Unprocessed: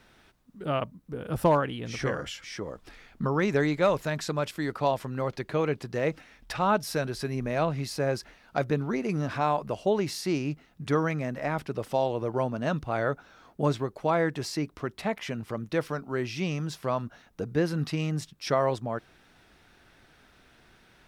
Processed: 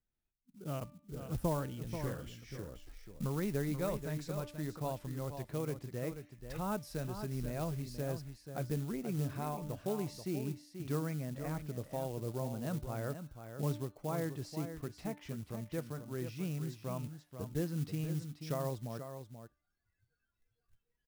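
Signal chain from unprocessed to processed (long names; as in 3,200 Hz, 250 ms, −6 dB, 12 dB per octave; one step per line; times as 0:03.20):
noise reduction from a noise print of the clip's start 24 dB
spectral tilt −4 dB per octave
single-tap delay 484 ms −9 dB
in parallel at −7 dB: floating-point word with a short mantissa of 2 bits
on the sum: first-order pre-emphasis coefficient 0.8
hum removal 295.3 Hz, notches 14
level −6.5 dB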